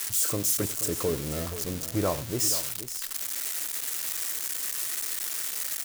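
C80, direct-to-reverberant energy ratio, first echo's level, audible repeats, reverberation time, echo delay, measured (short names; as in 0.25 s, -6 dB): none, none, -18.5 dB, 2, none, 93 ms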